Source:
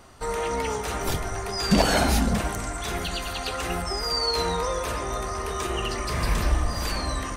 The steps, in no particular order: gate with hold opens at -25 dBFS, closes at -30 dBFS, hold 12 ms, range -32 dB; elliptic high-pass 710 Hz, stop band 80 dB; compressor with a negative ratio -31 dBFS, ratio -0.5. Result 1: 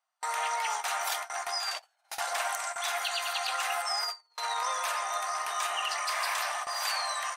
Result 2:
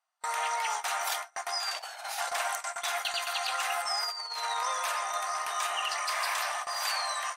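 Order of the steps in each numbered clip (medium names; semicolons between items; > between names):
elliptic high-pass > compressor with a negative ratio > gate with hold; elliptic high-pass > gate with hold > compressor with a negative ratio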